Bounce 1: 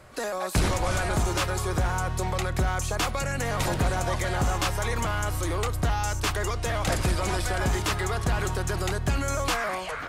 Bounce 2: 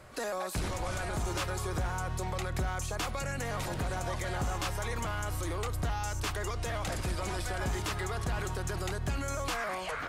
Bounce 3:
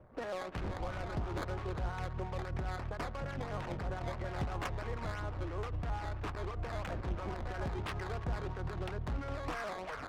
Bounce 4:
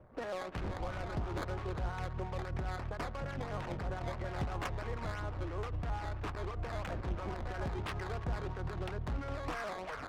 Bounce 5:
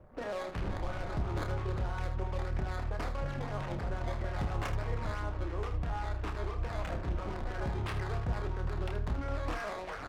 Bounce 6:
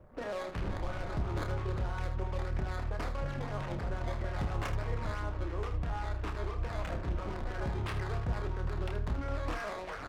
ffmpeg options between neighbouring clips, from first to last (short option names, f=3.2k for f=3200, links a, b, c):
-af "alimiter=limit=-24dB:level=0:latency=1:release=121,volume=-2dB"
-filter_complex "[0:a]acrossover=split=1100[a][b];[a]aeval=exprs='val(0)*(1-0.5/2+0.5/2*cos(2*PI*5.9*n/s))':c=same[c];[b]aeval=exprs='val(0)*(1-0.5/2-0.5/2*cos(2*PI*5.9*n/s))':c=same[d];[c][d]amix=inputs=2:normalize=0,acrusher=samples=11:mix=1:aa=0.000001:lfo=1:lforange=11:lforate=3,adynamicsmooth=sensitivity=7.5:basefreq=700,volume=-1.5dB"
-af anull
-filter_complex "[0:a]lowshelf=f=63:g=6,asplit=2[a][b];[b]aecho=0:1:29|78:0.473|0.335[c];[a][c]amix=inputs=2:normalize=0"
-af "equalizer=f=770:t=o:w=0.26:g=-2"